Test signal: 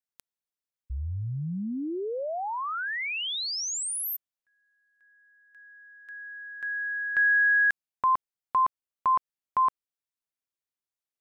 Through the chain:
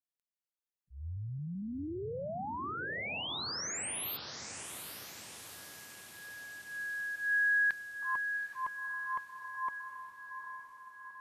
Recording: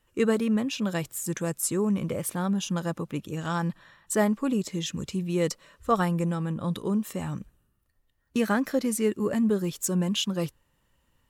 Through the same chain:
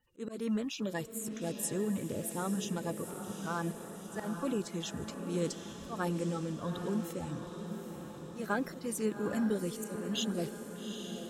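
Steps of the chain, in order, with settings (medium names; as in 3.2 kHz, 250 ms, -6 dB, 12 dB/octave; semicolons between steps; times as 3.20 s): coarse spectral quantiser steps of 30 dB; slow attack 177 ms; echo that smears into a reverb 818 ms, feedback 60%, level -7.5 dB; trim -7 dB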